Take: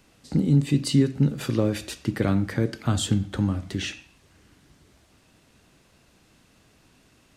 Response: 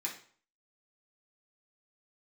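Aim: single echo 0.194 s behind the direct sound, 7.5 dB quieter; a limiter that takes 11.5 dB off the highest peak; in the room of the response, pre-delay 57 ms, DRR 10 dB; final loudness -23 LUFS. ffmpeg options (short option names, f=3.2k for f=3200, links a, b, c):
-filter_complex "[0:a]alimiter=limit=-20dB:level=0:latency=1,aecho=1:1:194:0.422,asplit=2[a][b];[1:a]atrim=start_sample=2205,adelay=57[c];[b][c]afir=irnorm=-1:irlink=0,volume=-12dB[d];[a][d]amix=inputs=2:normalize=0,volume=7dB"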